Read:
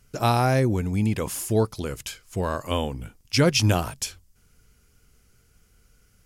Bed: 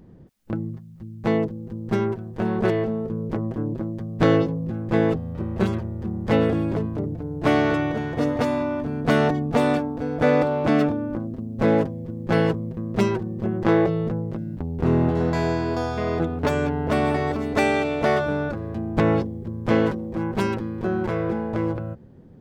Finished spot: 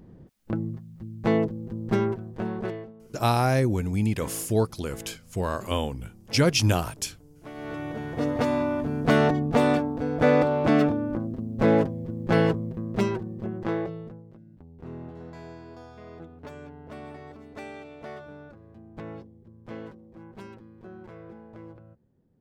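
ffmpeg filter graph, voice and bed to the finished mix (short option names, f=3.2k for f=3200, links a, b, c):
-filter_complex "[0:a]adelay=3000,volume=-1.5dB[a];[1:a]volume=21dB,afade=t=out:st=1.98:d=0.95:silence=0.0794328,afade=t=in:st=7.54:d=1.03:silence=0.0794328,afade=t=out:st=12.42:d=1.81:silence=0.112202[b];[a][b]amix=inputs=2:normalize=0"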